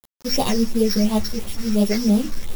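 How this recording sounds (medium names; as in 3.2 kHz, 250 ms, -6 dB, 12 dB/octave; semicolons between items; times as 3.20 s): a buzz of ramps at a fixed pitch in blocks of 8 samples; phasing stages 6, 2.9 Hz, lowest notch 730–1700 Hz; a quantiser's noise floor 6-bit, dither none; a shimmering, thickened sound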